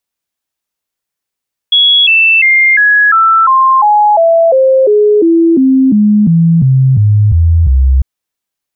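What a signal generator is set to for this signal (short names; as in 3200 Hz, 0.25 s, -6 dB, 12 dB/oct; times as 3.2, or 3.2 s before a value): stepped sine 3350 Hz down, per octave 3, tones 18, 0.35 s, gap 0.00 s -4 dBFS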